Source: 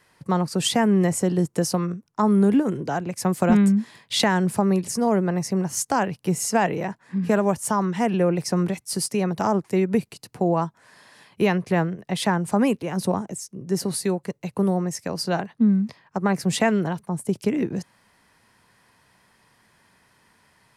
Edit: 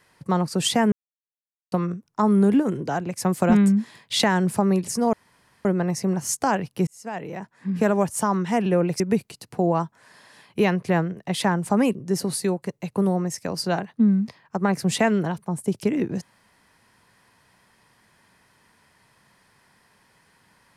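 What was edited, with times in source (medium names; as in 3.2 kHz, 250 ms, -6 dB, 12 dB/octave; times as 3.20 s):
0.92–1.72 s: mute
5.13 s: insert room tone 0.52 s
6.35–7.33 s: fade in
8.48–9.82 s: delete
12.77–13.56 s: delete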